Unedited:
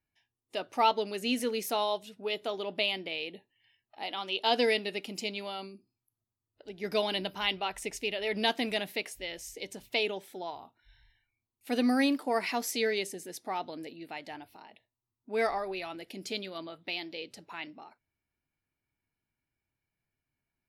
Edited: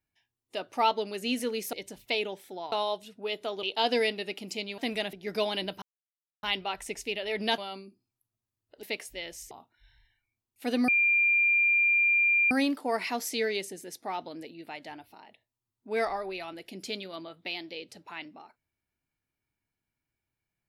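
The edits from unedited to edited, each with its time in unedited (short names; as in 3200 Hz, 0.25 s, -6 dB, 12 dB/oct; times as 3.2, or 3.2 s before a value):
2.64–4.3 cut
5.45–6.7 swap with 8.54–8.89
7.39 insert silence 0.61 s
9.57–10.56 move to 1.73
11.93 add tone 2390 Hz -20.5 dBFS 1.63 s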